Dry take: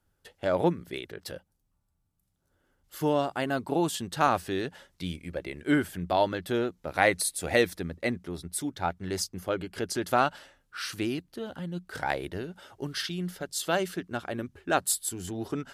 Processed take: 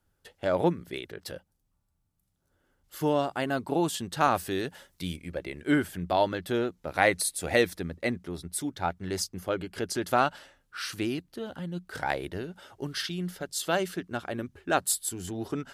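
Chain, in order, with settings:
0:04.35–0:05.17: high-shelf EQ 9,500 Hz +12 dB

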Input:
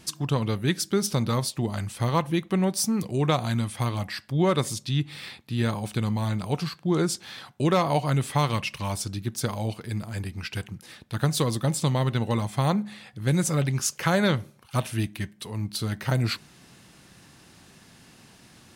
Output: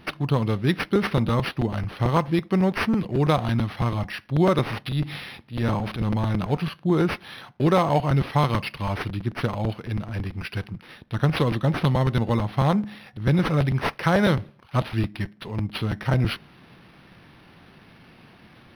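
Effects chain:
0:04.86–0:06.45: transient designer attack −11 dB, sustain +6 dB
regular buffer underruns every 0.11 s, samples 256, repeat, from 0:00.73
linearly interpolated sample-rate reduction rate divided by 6×
level +3 dB

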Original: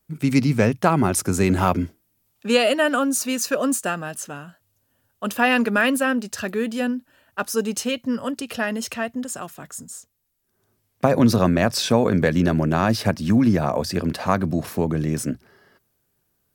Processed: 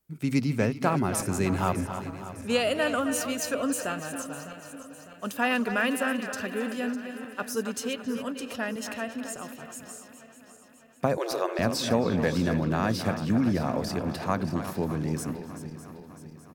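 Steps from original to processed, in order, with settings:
feedback delay that plays each chunk backwards 302 ms, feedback 70%, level −12 dB
0:11.17–0:11.59: linear-phase brick-wall high-pass 310 Hz
far-end echo of a speakerphone 270 ms, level −9 dB
level −7.5 dB

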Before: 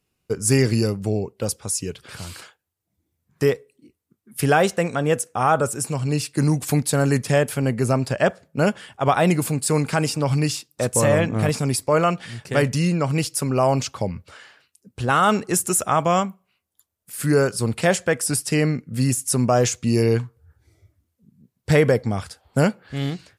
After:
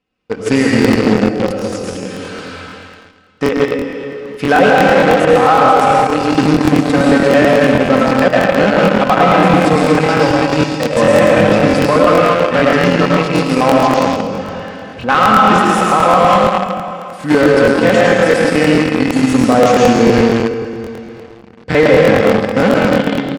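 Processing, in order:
reversed playback
upward compression, threshold −40 dBFS
reversed playback
comb filter 3.9 ms, depth 60%
comb and all-pass reverb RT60 2.3 s, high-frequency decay 0.95×, pre-delay 65 ms, DRR −4.5 dB
in parallel at −9 dB: log-companded quantiser 2 bits
on the sum: low-pass filter 3,100 Hz 12 dB per octave
low-shelf EQ 88 Hz −10 dB
brickwall limiter −3 dBFS, peak gain reduction 5.5 dB
regular buffer underruns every 0.11 s, samples 1,024, repeat, from 0:00.80
level +2 dB

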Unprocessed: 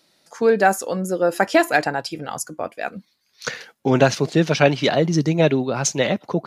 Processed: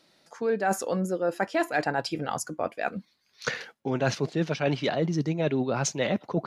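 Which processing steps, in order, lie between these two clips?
high-shelf EQ 6,600 Hz −10 dB
reversed playback
downward compressor 6 to 1, threshold −23 dBFS, peak gain reduction 13.5 dB
reversed playback

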